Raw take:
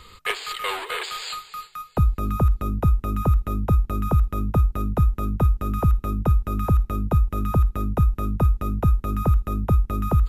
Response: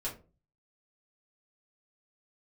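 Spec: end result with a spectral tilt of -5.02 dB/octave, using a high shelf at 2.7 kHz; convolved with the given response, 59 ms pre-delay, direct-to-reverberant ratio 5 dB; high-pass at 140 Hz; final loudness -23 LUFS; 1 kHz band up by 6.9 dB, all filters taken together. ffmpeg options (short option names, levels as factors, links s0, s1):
-filter_complex "[0:a]highpass=140,equalizer=f=1000:t=o:g=7.5,highshelf=f=2700:g=8.5,asplit=2[s0][s1];[1:a]atrim=start_sample=2205,adelay=59[s2];[s1][s2]afir=irnorm=-1:irlink=0,volume=0.447[s3];[s0][s3]amix=inputs=2:normalize=0,volume=1.19"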